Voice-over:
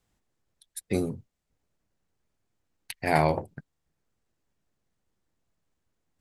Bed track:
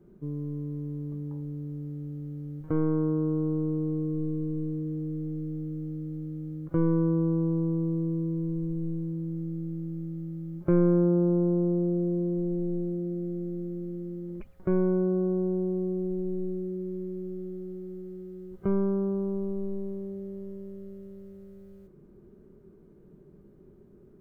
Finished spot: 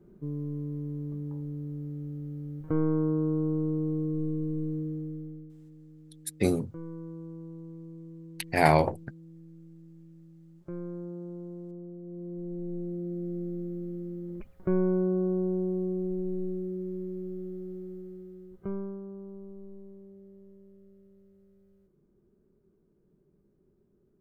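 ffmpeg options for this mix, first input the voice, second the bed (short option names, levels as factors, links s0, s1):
-filter_complex "[0:a]adelay=5500,volume=1.26[s0];[1:a]volume=5.62,afade=t=out:st=4.79:d=0.74:silence=0.158489,afade=t=in:st=12.02:d=1.37:silence=0.16788,afade=t=out:st=17.81:d=1.2:silence=0.237137[s1];[s0][s1]amix=inputs=2:normalize=0"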